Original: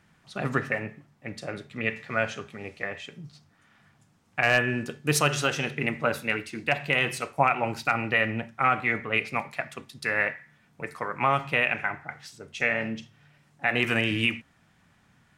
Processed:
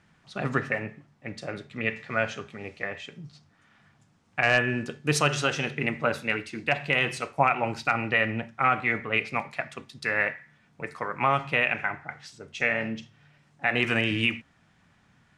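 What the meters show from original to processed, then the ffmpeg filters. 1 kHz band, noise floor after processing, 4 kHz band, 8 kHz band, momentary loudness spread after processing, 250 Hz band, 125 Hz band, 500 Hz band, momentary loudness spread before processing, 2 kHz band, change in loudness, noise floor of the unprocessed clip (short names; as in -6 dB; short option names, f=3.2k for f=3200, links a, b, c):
0.0 dB, -64 dBFS, 0.0 dB, -2.5 dB, 16 LU, 0.0 dB, 0.0 dB, 0.0 dB, 16 LU, 0.0 dB, 0.0 dB, -64 dBFS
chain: -af "lowpass=7.9k"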